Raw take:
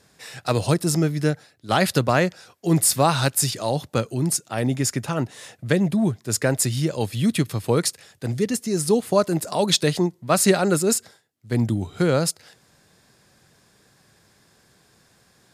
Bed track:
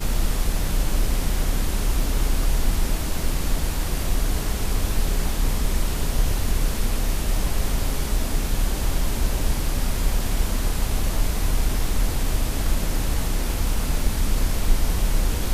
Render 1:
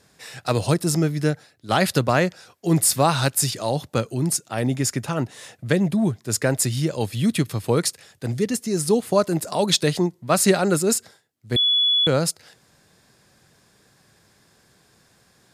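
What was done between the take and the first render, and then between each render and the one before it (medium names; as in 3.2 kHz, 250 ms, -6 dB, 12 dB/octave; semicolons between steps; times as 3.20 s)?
11.56–12.07 s: bleep 3.41 kHz -15.5 dBFS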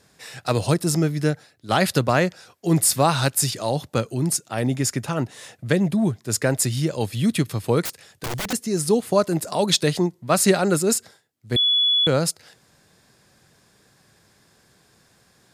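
7.85–8.53 s: integer overflow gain 22.5 dB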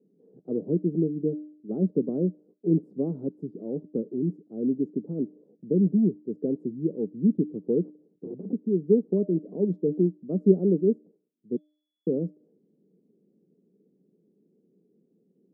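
elliptic band-pass 180–440 Hz, stop band 70 dB; de-hum 302.4 Hz, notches 29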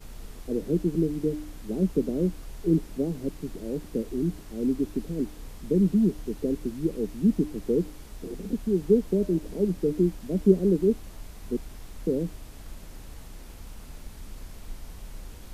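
add bed track -20 dB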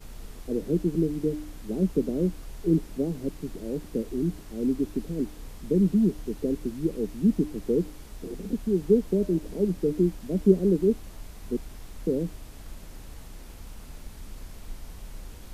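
no audible change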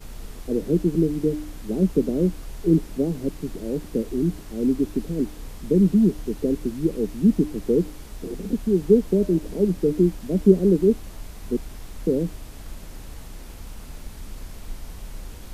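trim +4.5 dB; peak limiter -3 dBFS, peak gain reduction 1 dB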